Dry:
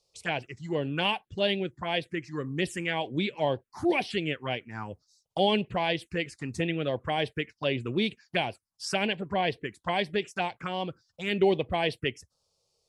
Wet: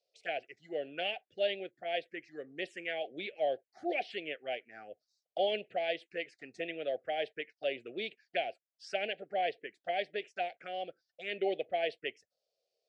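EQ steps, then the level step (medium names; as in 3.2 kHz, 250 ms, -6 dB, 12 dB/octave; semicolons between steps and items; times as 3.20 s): resonant high-pass 730 Hz, resonance Q 4.9; Butterworth band-stop 980 Hz, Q 0.73; tape spacing loss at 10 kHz 28 dB; 0.0 dB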